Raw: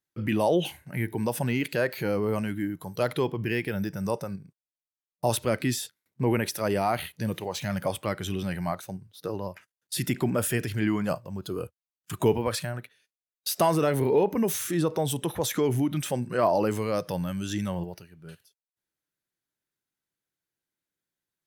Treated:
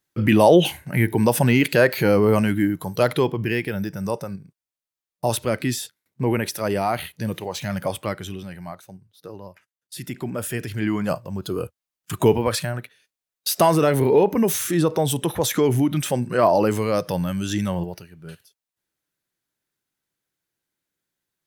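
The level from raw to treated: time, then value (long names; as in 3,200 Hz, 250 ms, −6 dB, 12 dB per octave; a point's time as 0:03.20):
0:02.61 +10 dB
0:03.82 +3 dB
0:08.08 +3 dB
0:08.49 −5.5 dB
0:09.99 −5.5 dB
0:11.29 +6 dB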